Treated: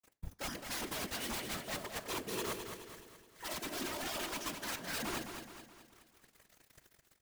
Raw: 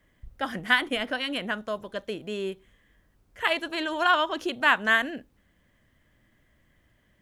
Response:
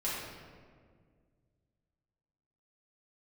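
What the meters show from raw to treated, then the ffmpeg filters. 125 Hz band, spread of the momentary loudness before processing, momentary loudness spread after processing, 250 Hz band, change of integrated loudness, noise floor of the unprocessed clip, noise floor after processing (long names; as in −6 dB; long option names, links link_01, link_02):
can't be measured, 12 LU, 14 LU, −11.0 dB, −13.5 dB, −66 dBFS, −73 dBFS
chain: -filter_complex "[0:a]highshelf=frequency=4600:width_type=q:width=3:gain=6,aecho=1:1:3.1:0.71,areverse,acompressor=threshold=-37dB:ratio=12,areverse,acrusher=bits=8:mix=0:aa=0.000001,flanger=delay=9.2:depth=8.3:regen=81:speed=0.4:shape=triangular,aeval=exprs='(mod(94.4*val(0)+1,2)-1)/94.4':channel_layout=same,afftfilt=real='hypot(re,im)*cos(2*PI*random(0))':imag='hypot(re,im)*sin(2*PI*random(1))':win_size=512:overlap=0.75,asplit=2[link_01][link_02];[link_02]aecho=0:1:212|424|636|848|1060|1272:0.422|0.202|0.0972|0.0466|0.0224|0.0107[link_03];[link_01][link_03]amix=inputs=2:normalize=0,volume=11.5dB"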